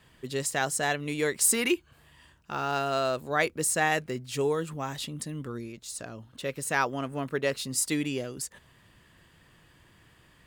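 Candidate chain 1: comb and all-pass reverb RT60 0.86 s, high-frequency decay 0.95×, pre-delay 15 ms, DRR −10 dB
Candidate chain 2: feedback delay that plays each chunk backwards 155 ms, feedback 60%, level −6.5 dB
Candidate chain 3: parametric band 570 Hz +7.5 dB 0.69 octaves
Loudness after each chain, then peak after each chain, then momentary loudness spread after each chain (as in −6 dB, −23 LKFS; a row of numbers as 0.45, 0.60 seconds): −19.0, −28.0, −27.0 LKFS; −1.5, −10.0, −9.5 dBFS; 14, 13, 14 LU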